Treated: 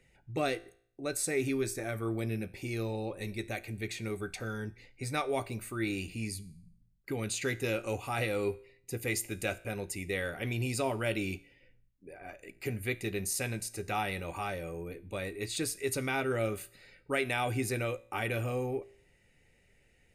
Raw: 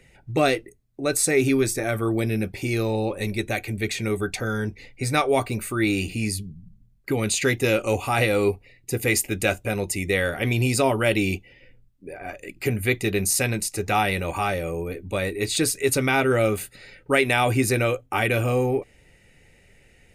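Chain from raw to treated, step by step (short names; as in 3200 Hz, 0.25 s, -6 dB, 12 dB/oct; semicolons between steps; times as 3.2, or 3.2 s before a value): resonator 57 Hz, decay 0.57 s, harmonics all, mix 40%; gain -8 dB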